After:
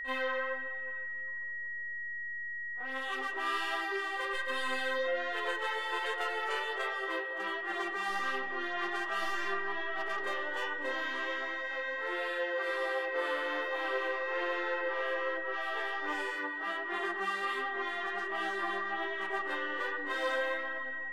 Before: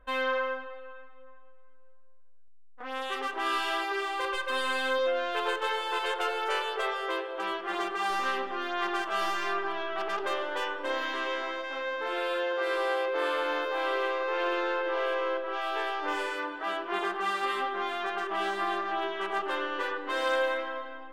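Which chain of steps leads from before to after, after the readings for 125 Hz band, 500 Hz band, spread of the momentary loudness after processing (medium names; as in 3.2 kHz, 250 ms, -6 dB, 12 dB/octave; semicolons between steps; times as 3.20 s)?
no reading, -5.5 dB, 4 LU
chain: flange 1.3 Hz, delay 6.1 ms, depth 5.2 ms, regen +33%; reverse echo 31 ms -11 dB; whistle 1.9 kHz -35 dBFS; trim -2 dB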